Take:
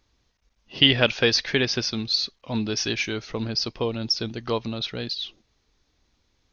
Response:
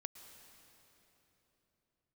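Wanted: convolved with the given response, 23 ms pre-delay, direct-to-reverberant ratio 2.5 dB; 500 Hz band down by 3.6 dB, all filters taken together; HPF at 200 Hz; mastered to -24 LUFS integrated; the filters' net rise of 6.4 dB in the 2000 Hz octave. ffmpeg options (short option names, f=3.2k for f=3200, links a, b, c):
-filter_complex "[0:a]highpass=200,equalizer=f=500:t=o:g=-4.5,equalizer=f=2k:t=o:g=8.5,asplit=2[a][b];[1:a]atrim=start_sample=2205,adelay=23[c];[b][c]afir=irnorm=-1:irlink=0,volume=1.5dB[d];[a][d]amix=inputs=2:normalize=0,volume=-4.5dB"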